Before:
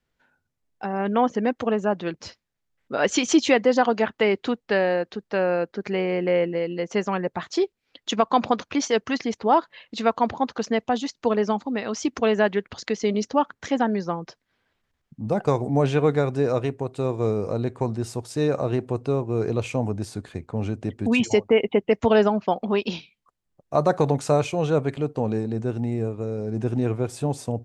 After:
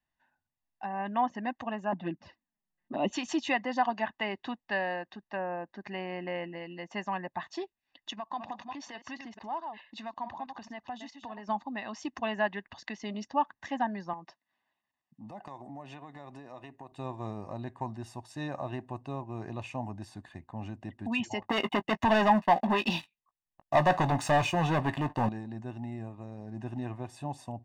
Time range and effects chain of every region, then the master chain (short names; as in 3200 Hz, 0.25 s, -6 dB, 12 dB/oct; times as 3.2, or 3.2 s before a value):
1.92–3.13 envelope flanger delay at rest 5.8 ms, full sweep at -23 dBFS + LPF 3800 Hz + bell 250 Hz +13.5 dB 1.7 oct
5.19–5.67 treble ducked by the level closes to 1500 Hz, closed at -20.5 dBFS + LPF 8100 Hz
8.1–11.49 reverse delay 0.215 s, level -11.5 dB + compressor 2.5:1, threshold -31 dBFS
14.13–16.92 HPF 170 Hz + compressor, threshold -29 dBFS + notch 1600 Hz
21.42–25.29 sample leveller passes 3 + doubler 18 ms -13.5 dB
whole clip: tone controls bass -9 dB, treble -9 dB; comb 1.1 ms, depth 88%; gain -9 dB